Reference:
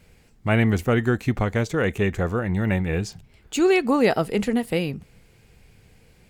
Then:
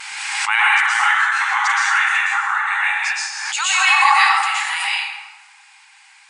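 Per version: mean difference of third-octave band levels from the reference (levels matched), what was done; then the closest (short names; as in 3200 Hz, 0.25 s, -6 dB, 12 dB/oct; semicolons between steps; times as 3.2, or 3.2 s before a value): 21.5 dB: vibrato 0.44 Hz 10 cents; brick-wall FIR band-pass 770–10000 Hz; plate-style reverb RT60 1.3 s, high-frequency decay 0.6×, pre-delay 0.105 s, DRR -9 dB; backwards sustainer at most 32 dB/s; gain +5.5 dB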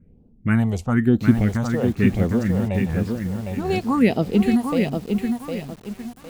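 7.5 dB: bell 230 Hz +9 dB 0.82 oct; phaser stages 4, 1 Hz, lowest notch 260–1900 Hz; low-pass opened by the level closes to 590 Hz, open at -17 dBFS; lo-fi delay 0.758 s, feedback 35%, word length 7-bit, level -4.5 dB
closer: second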